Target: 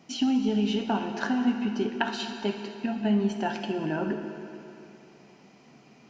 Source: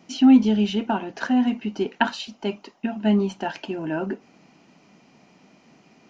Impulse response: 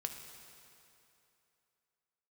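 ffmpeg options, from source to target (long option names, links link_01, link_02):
-filter_complex "[0:a]acompressor=threshold=-21dB:ratio=4[link_01];[1:a]atrim=start_sample=2205[link_02];[link_01][link_02]afir=irnorm=-1:irlink=0"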